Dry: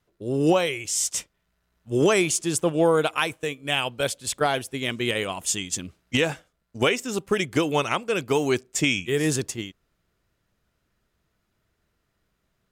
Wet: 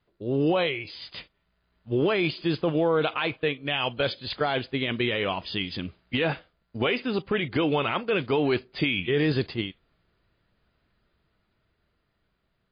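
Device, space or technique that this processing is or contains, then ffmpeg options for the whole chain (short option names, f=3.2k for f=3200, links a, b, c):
low-bitrate web radio: -af "dynaudnorm=f=800:g=5:m=3.5dB,alimiter=limit=-15dB:level=0:latency=1:release=13" -ar 11025 -c:a libmp3lame -b:a 24k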